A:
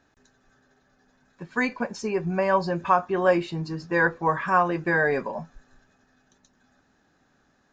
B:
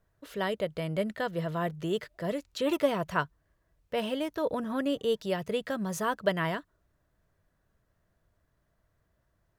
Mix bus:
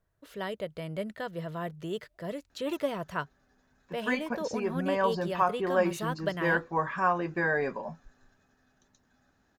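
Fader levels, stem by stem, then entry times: -5.5 dB, -4.5 dB; 2.50 s, 0.00 s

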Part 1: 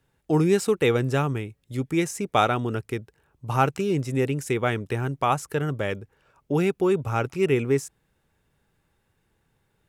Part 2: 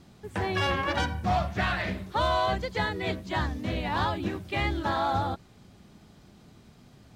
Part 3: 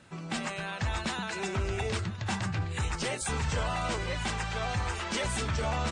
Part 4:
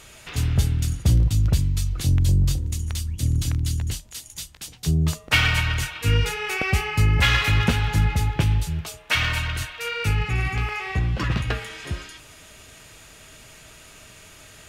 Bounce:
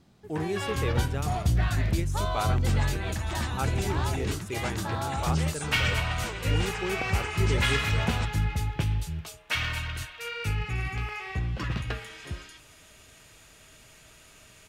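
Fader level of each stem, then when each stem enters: -11.5 dB, -6.5 dB, -3.5 dB, -7.0 dB; 0.00 s, 0.00 s, 2.35 s, 0.40 s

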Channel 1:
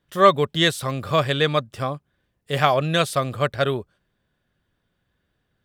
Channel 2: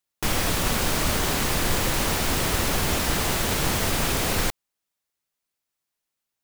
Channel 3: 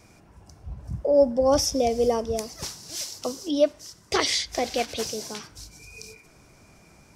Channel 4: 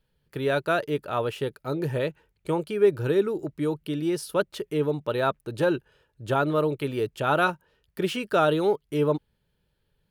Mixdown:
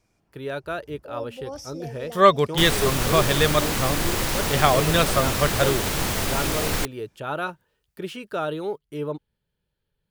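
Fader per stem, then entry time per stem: -0.5 dB, -1.0 dB, -16.0 dB, -6.0 dB; 2.00 s, 2.35 s, 0.00 s, 0.00 s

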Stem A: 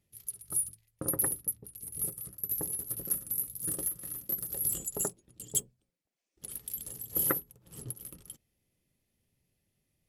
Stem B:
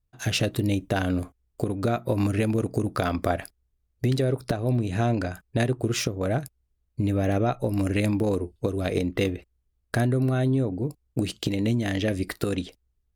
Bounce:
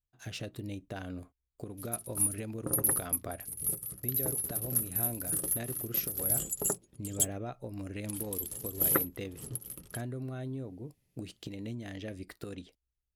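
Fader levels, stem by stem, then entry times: +1.5 dB, -15.5 dB; 1.65 s, 0.00 s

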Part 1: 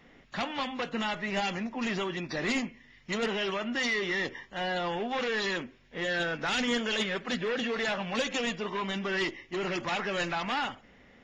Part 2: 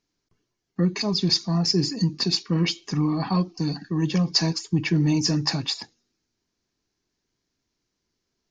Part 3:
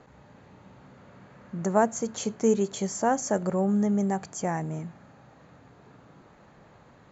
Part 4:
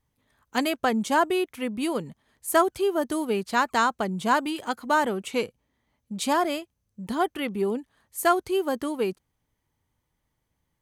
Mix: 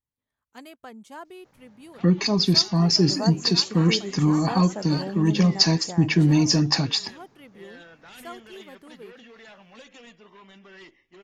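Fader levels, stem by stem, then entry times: -17.0 dB, +3.0 dB, -8.0 dB, -19.0 dB; 1.60 s, 1.25 s, 1.45 s, 0.00 s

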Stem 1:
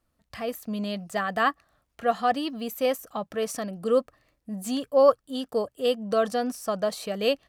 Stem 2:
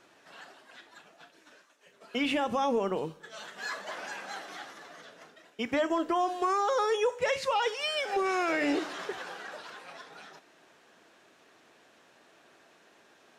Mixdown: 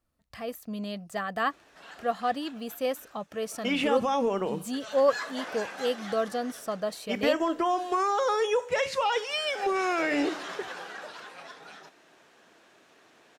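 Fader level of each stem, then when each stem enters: -4.5 dB, +1.5 dB; 0.00 s, 1.50 s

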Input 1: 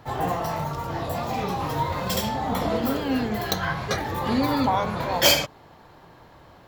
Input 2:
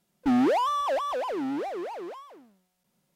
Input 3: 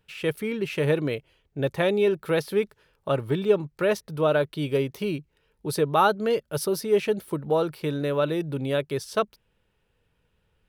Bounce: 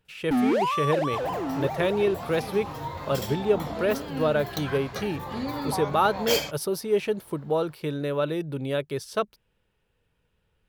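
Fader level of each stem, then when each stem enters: -8.5 dB, -0.5 dB, -2.0 dB; 1.05 s, 0.05 s, 0.00 s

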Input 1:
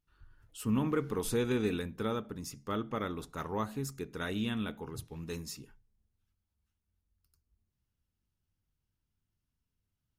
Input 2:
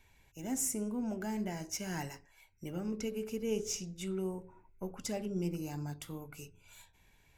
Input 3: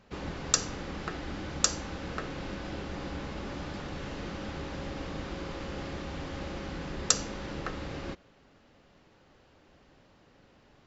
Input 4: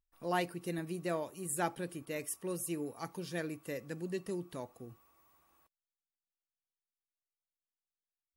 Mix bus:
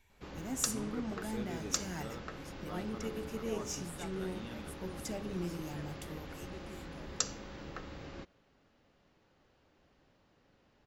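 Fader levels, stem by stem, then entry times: -13.5 dB, -3.5 dB, -8.5 dB, -14.0 dB; 0.00 s, 0.00 s, 0.10 s, 2.40 s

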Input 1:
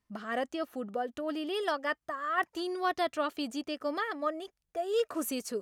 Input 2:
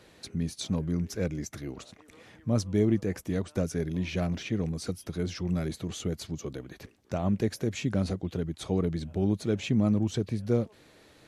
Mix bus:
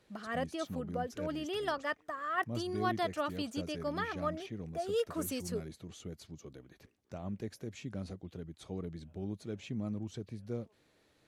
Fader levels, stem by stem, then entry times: -3.5 dB, -13.0 dB; 0.00 s, 0.00 s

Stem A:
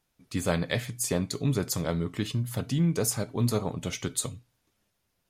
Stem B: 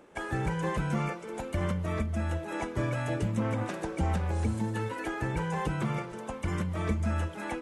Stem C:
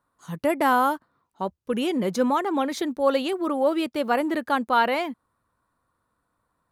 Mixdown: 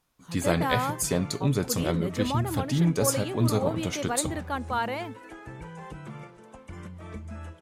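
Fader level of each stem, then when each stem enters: +1.5 dB, -10.0 dB, -8.0 dB; 0.00 s, 0.25 s, 0.00 s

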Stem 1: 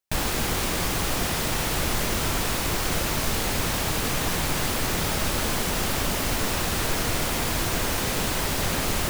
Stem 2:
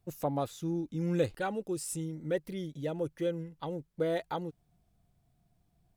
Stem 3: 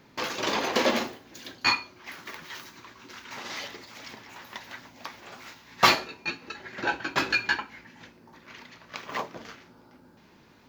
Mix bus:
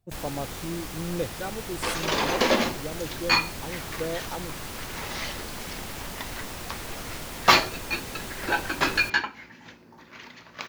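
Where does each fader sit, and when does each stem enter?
-11.5 dB, -1.0 dB, +2.0 dB; 0.00 s, 0.00 s, 1.65 s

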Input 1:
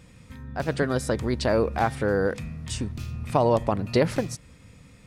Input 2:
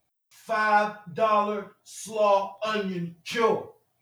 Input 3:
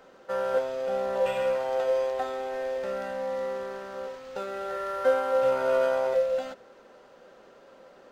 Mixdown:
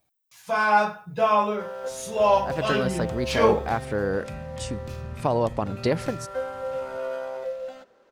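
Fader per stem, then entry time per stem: -2.5 dB, +2.0 dB, -7.0 dB; 1.90 s, 0.00 s, 1.30 s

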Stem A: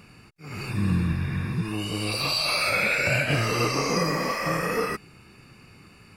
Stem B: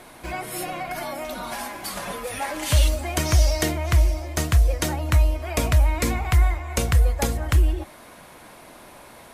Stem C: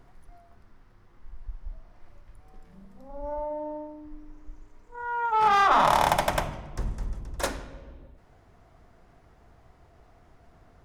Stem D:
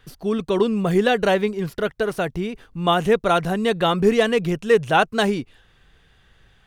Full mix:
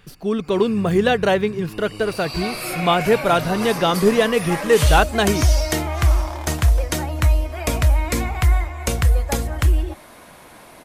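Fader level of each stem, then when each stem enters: -7.5 dB, +1.5 dB, -14.0 dB, +1.0 dB; 0.00 s, 2.10 s, 0.40 s, 0.00 s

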